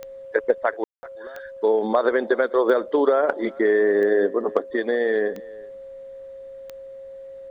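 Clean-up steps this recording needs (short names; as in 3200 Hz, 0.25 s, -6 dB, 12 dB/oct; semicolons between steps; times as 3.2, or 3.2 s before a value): de-click; notch 540 Hz, Q 30; room tone fill 0.84–1.03; inverse comb 0.375 s -23.5 dB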